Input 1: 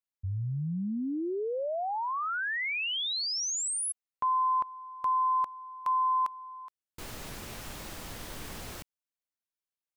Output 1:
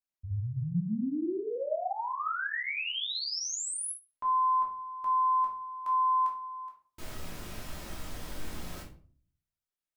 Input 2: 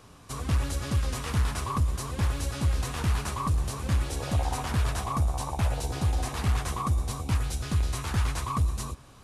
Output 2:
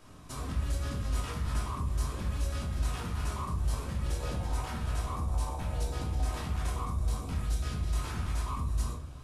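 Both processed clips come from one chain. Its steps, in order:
brickwall limiter −26.5 dBFS
rectangular room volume 380 cubic metres, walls furnished, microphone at 2.8 metres
level −6.5 dB

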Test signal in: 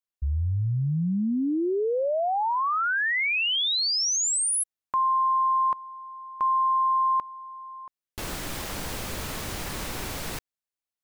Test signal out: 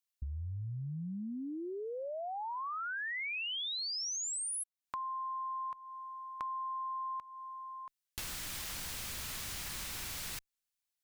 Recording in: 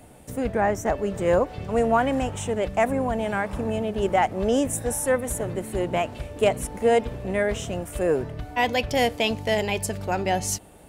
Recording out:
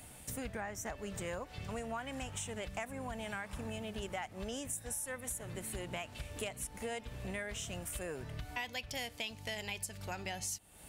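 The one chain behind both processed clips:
guitar amp tone stack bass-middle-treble 5-5-5
downward compressor 6 to 1, threshold −48 dBFS
level +9.5 dB

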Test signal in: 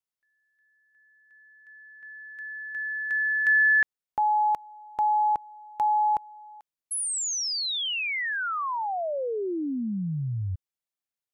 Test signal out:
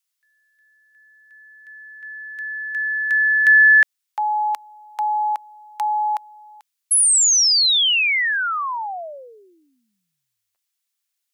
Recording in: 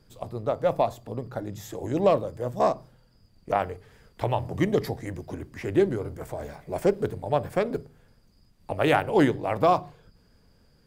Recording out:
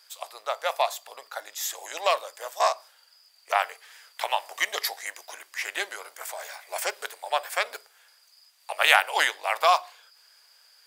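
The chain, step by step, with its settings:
high-pass filter 670 Hz 24 dB per octave
tilt shelving filter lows −9.5 dB, about 1,100 Hz
level +5 dB

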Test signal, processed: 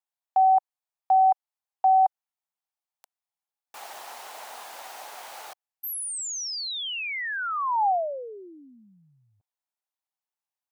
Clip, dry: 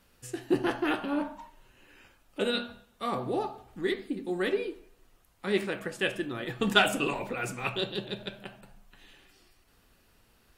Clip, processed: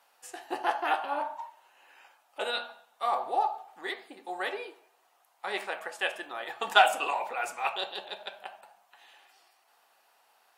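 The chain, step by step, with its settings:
high-pass with resonance 780 Hz, resonance Q 3.6
level −1.5 dB

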